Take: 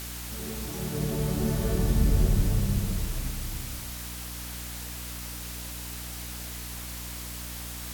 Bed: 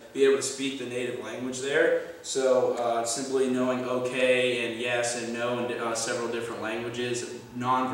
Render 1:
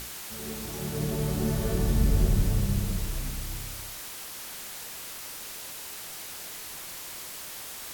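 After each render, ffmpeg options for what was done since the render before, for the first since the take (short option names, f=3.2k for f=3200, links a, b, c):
-af "bandreject=f=60:t=h:w=6,bandreject=f=120:t=h:w=6,bandreject=f=180:t=h:w=6,bandreject=f=240:t=h:w=6,bandreject=f=300:t=h:w=6"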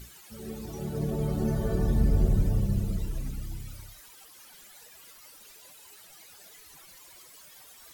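-af "afftdn=nr=16:nf=-40"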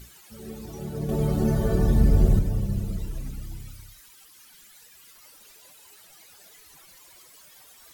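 -filter_complex "[0:a]asettb=1/sr,asplit=3[a][b][c];[a]atrim=end=3.714[d];[b]atrim=start=3.71:end=5.15,asetpts=PTS-STARTPTS,afade=t=in:d=0.004:c=qsin,afade=t=out:st=1.436:d=0.004:c=qsin,equalizer=f=620:t=o:w=1.4:g=-8.5[e];[c]atrim=start=5.146[f];[d][e]acrossfade=d=0.004:c1=hsin:c2=qsin[g];[g][f]acrossfade=d=0.004:c1=qsin:c2=hsin,asplit=3[h][i][j];[h]atrim=end=1.092[k];[i]atrim=start=1.088:end=2.392,asetpts=PTS-STARTPTS,volume=5dB[l];[j]atrim=start=2.388[m];[k][l]acrossfade=d=0.004:c1=hsin:c2=hsin[n];[n][m]acrossfade=d=0.004:c1=hsin:c2=hsin"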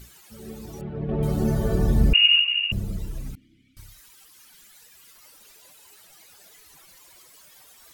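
-filter_complex "[0:a]asettb=1/sr,asplit=3[a][b][c];[a]atrim=end=0.814[d];[b]atrim=start=0.81:end=1.23,asetpts=PTS-STARTPTS,afade=t=in:d=0.004:c=qsin,afade=t=out:st=0.416:d=0.004:c=qsin,lowpass=f=2.8k:w=0.5412,lowpass=f=2.8k:w=1.3066[e];[c]atrim=start=1.226[f];[d][e]acrossfade=d=0.004:c1=hsin:c2=qsin[g];[g][f]acrossfade=d=0.004:c1=qsin:c2=hsin,asettb=1/sr,asplit=3[h][i][j];[h]atrim=end=2.134[k];[i]atrim=start=2.13:end=2.72,asetpts=PTS-STARTPTS,afade=t=in:d=0.004:c=qsin,afade=t=out:st=0.586:d=0.004:c=qsin,lowpass=f=2.5k:t=q:w=0.5098,lowpass=f=2.5k:t=q:w=0.6013,lowpass=f=2.5k:t=q:w=0.9,lowpass=f=2.5k:t=q:w=2.563,afreqshift=-2900[l];[j]atrim=start=2.716[m];[k][l]acrossfade=d=0.004:c1=hsin:c2=qsin[n];[n][m]acrossfade=d=0.004:c1=qsin:c2=hsin,asettb=1/sr,asplit=3[o][p][q];[o]atrim=end=3.354[r];[p]atrim=start=3.35:end=3.77,asetpts=PTS-STARTPTS,afade=t=in:d=0.004:c=qsin,afade=t=out:st=0.416:d=0.004:c=qsin,asplit=3[s][t][u];[s]bandpass=f=270:t=q:w=8,volume=0dB[v];[t]bandpass=f=2.29k:t=q:w=8,volume=-6dB[w];[u]bandpass=f=3.01k:t=q:w=8,volume=-9dB[x];[v][w][x]amix=inputs=3:normalize=0[y];[q]atrim=start=3.766[z];[r][y]acrossfade=d=0.004:c1=hsin:c2=qsin[aa];[aa][z]acrossfade=d=0.004:c1=qsin:c2=hsin"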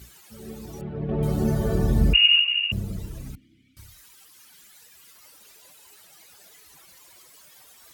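-af "highpass=f=42:w=0.5412,highpass=f=42:w=1.3066"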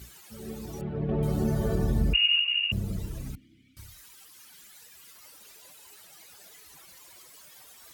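-af "acompressor=threshold=-25dB:ratio=2"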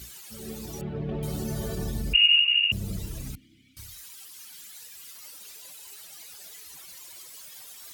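-filter_complex "[0:a]acrossover=split=2500[a][b];[a]alimiter=limit=-24dB:level=0:latency=1[c];[b]acontrast=74[d];[c][d]amix=inputs=2:normalize=0"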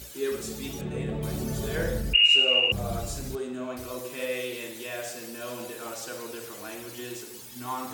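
-filter_complex "[1:a]volume=-8.5dB[a];[0:a][a]amix=inputs=2:normalize=0"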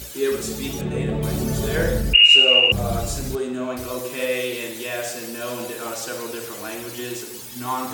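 -af "volume=7.5dB,alimiter=limit=-3dB:level=0:latency=1"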